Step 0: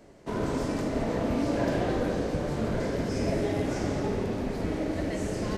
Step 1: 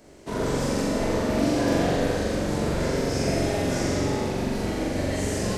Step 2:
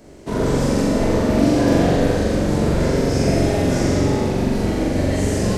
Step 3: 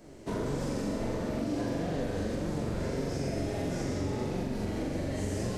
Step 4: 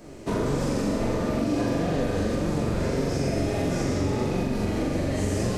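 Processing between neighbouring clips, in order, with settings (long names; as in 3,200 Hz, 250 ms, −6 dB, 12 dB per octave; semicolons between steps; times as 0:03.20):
high-shelf EQ 3,500 Hz +8.5 dB; flutter between parallel walls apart 7.4 metres, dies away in 1.2 s
low-shelf EQ 500 Hz +6 dB; level +3 dB
downward compressor 6 to 1, threshold −22 dBFS, peak gain reduction 11 dB; flanger 1.6 Hz, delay 5.3 ms, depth 5.5 ms, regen +62%; level −3 dB
hollow resonant body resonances 1,200/2,500 Hz, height 10 dB, ringing for 85 ms; level +7 dB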